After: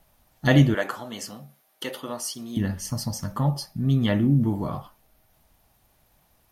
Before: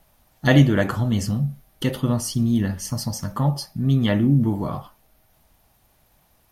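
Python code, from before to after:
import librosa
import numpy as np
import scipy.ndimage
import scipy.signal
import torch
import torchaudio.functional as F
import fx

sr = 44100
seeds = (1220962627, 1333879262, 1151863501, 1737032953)

y = fx.highpass(x, sr, hz=480.0, slope=12, at=(0.74, 2.57))
y = y * 10.0 ** (-2.5 / 20.0)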